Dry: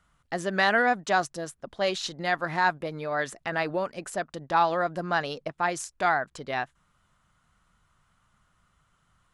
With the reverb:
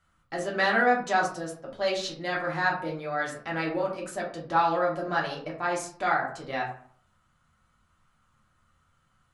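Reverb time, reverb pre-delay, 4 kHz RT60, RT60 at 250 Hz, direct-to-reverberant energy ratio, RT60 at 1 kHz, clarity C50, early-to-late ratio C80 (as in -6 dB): 0.50 s, 3 ms, 0.30 s, 0.60 s, -4.0 dB, 0.50 s, 7.0 dB, 11.5 dB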